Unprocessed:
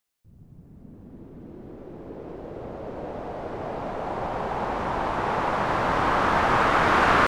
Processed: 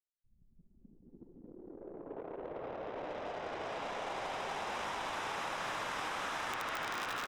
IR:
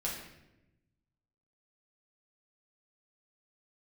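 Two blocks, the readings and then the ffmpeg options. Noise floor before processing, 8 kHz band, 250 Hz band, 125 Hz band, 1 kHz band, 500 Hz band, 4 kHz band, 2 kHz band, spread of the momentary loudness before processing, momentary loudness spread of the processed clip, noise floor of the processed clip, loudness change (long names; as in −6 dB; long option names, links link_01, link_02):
−51 dBFS, can't be measured, −17.5 dB, −21.5 dB, −15.5 dB, −14.0 dB, −7.0 dB, −13.5 dB, 22 LU, 13 LU, −69 dBFS, −14.5 dB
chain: -filter_complex "[0:a]highshelf=frequency=2900:gain=8,asplit=2[link_01][link_02];[1:a]atrim=start_sample=2205,atrim=end_sample=3969[link_03];[link_02][link_03]afir=irnorm=-1:irlink=0,volume=-20dB[link_04];[link_01][link_04]amix=inputs=2:normalize=0,aeval=exprs='(mod(2.51*val(0)+1,2)-1)/2.51':channel_layout=same,lowshelf=frequency=280:gain=-10.5,aecho=1:1:66|76:0.188|0.631,acompressor=threshold=-25dB:ratio=6,anlmdn=0.631,acrossover=split=370|2100|6000[link_05][link_06][link_07][link_08];[link_05]acompressor=threshold=-53dB:ratio=4[link_09];[link_06]acompressor=threshold=-41dB:ratio=4[link_10];[link_07]acompressor=threshold=-44dB:ratio=4[link_11];[link_08]acompressor=threshold=-54dB:ratio=4[link_12];[link_09][link_10][link_11][link_12]amix=inputs=4:normalize=0,bandreject=frequency=4400:width=9.3"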